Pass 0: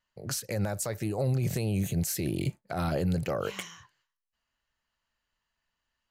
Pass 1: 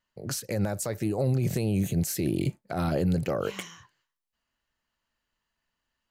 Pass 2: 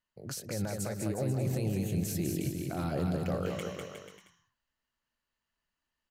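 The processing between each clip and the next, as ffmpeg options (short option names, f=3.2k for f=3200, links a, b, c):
-af "equalizer=f=280:w=0.84:g=5"
-af "aecho=1:1:200|360|488|590.4|672.3:0.631|0.398|0.251|0.158|0.1,volume=-7dB"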